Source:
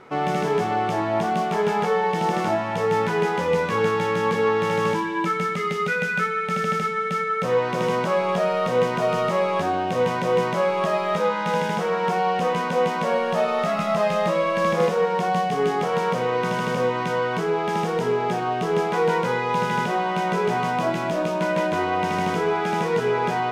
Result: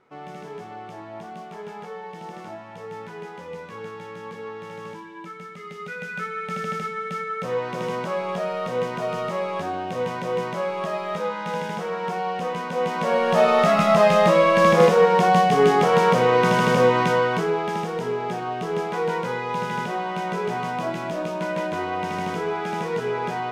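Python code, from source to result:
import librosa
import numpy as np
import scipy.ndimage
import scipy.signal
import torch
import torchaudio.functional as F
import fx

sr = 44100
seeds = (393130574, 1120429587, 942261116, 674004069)

y = fx.gain(x, sr, db=fx.line((5.52, -15.0), (6.42, -5.0), (12.69, -5.0), (13.47, 5.5), (17.0, 5.5), (17.88, -4.0)))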